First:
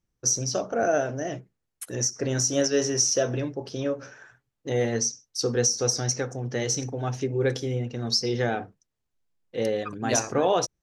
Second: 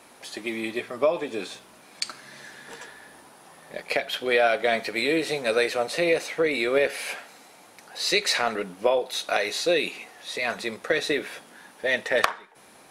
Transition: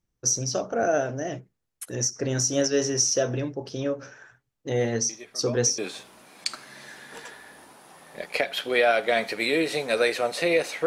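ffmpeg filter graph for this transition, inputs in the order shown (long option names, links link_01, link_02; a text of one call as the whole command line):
ffmpeg -i cue0.wav -i cue1.wav -filter_complex "[1:a]asplit=2[link_01][link_02];[0:a]apad=whole_dur=10.86,atrim=end=10.86,atrim=end=5.782[link_03];[link_02]atrim=start=1.338:end=6.42[link_04];[link_01]atrim=start=0.65:end=1.34,asetpts=PTS-STARTPTS,volume=-13.5dB,afade=type=in:duration=0.004:curve=hsin,afade=type=out:start_time=0.686:duration=0.004:curve=hsin,adelay=224469S[link_05];[link_03][link_04]acrossfade=duration=0.004:curve1=hsin:curve2=hsin[link_06];[link_06][link_05]amix=inputs=2:normalize=0" out.wav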